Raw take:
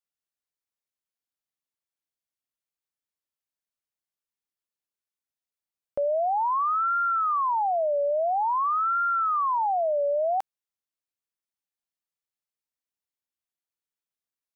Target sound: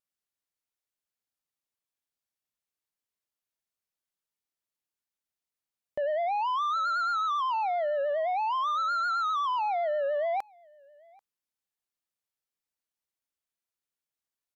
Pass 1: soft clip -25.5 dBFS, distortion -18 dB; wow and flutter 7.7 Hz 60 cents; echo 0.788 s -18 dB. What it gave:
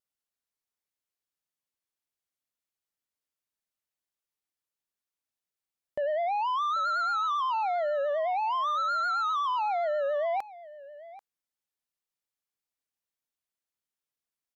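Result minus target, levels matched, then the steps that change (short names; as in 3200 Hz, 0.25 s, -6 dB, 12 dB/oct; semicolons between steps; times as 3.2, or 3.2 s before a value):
echo-to-direct +10 dB
change: echo 0.788 s -28 dB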